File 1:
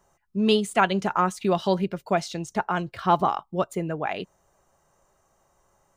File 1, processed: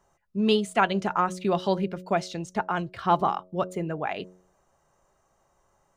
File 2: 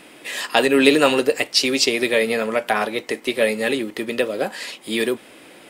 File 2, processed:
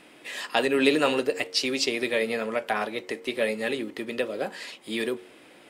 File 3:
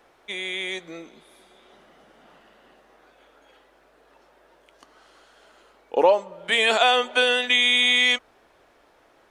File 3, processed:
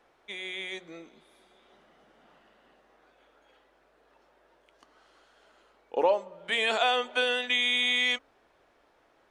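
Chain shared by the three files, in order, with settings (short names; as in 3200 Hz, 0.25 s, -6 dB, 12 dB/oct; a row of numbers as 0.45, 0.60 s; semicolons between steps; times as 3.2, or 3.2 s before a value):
high shelf 8800 Hz -7.5 dB; de-hum 91.6 Hz, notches 7; match loudness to -27 LUFS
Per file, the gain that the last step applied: -1.5, -6.5, -6.5 dB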